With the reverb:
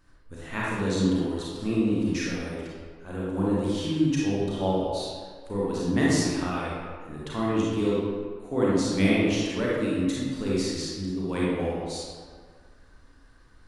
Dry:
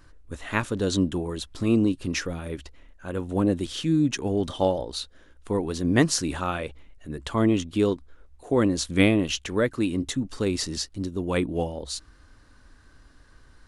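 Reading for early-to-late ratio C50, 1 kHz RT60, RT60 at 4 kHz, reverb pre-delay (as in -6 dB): -4.0 dB, 1.8 s, 1.0 s, 30 ms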